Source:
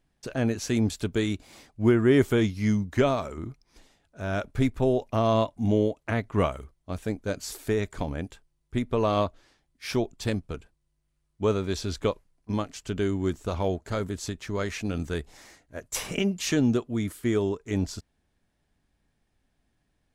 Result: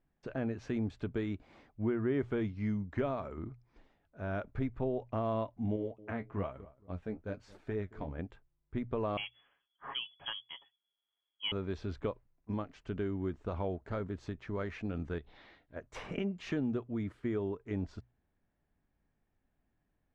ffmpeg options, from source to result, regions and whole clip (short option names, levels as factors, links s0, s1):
-filter_complex "[0:a]asettb=1/sr,asplit=3[s0][s1][s2];[s0]atrim=end=5.764[s3];[s1]atrim=start=5.76:end=8.19,asetpts=PTS-STARTPTS,afade=t=in:d=0.004:c=qsin,afade=t=out:st=2.426:d=0.004:c=qsin,flanger=delay=5.4:depth=8.8:regen=39:speed=1.1:shape=triangular,asplit=2[s4][s5];[s5]adelay=223,lowpass=f=990:p=1,volume=0.0944,asplit=2[s6][s7];[s7]adelay=223,lowpass=f=990:p=1,volume=0.3[s8];[s4][s6][s8]amix=inputs=3:normalize=0,atrim=end_sample=107163[s9];[s2]atrim=start=8.186[s10];[s3][s9]acrossfade=d=0.004:c1=hsin:c2=qsin[s11];[s11][s10]acrossfade=d=0.004:c1=qsin:c2=hsin,asettb=1/sr,asplit=3[s12][s13][s14];[s12]atrim=end=9.174[s15];[s13]atrim=start=9.17:end=11.52,asetpts=PTS-STARTPTS,afade=t=in:d=0.004:c=qsin,afade=t=out:st=2.346:d=0.004:c=qsin,aecho=1:1:7.4:0.45,atrim=end_sample=103635,lowpass=f=2900:t=q:w=0.5098,lowpass=f=2900:t=q:w=0.6013,lowpass=f=2900:t=q:w=0.9,lowpass=f=2900:t=q:w=2.563,afreqshift=-3400[s16];[s14]atrim=start=11.516[s17];[s15][s16]acrossfade=d=0.004:c1=hsin:c2=qsin[s18];[s18][s17]acrossfade=d=0.004:c1=qsin:c2=hsin,asettb=1/sr,asplit=3[s19][s20][s21];[s19]atrim=end=15.184[s22];[s20]atrim=start=15.18:end=15.76,asetpts=PTS-STARTPTS,afade=t=in:d=0.004:c=qsin,afade=t=out:st=0.576:d=0.004:c=qsin,acompressor=threshold=0.00891:ratio=2.5:attack=3.2:release=140:knee=1:detection=peak,lowpass=f=3700:t=q:w=4.3[s23];[s21]atrim=start=15.756[s24];[s22][s23]acrossfade=d=0.004:c1=hsin:c2=qsin[s25];[s25][s24]acrossfade=d=0.004:c1=qsin:c2=hsin,lowpass=2000,bandreject=f=60:t=h:w=6,bandreject=f=120:t=h:w=6,acompressor=threshold=0.0398:ratio=2,volume=0.531"